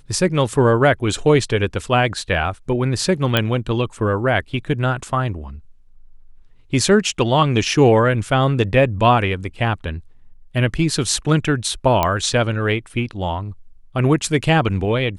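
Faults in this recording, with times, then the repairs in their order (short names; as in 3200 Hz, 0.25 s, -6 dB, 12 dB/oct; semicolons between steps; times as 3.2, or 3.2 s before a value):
3.37 pop -3 dBFS
12.03 pop -4 dBFS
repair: de-click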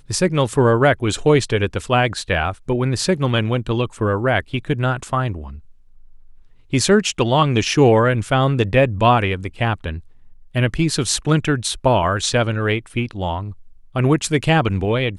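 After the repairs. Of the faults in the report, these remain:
none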